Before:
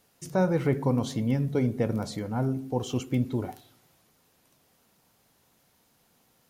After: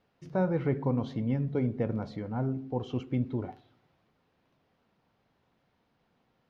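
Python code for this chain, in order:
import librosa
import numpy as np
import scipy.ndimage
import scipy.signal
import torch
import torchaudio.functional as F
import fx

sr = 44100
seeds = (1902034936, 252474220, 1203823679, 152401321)

y = fx.air_absorb(x, sr, metres=290.0)
y = y * librosa.db_to_amplitude(-3.0)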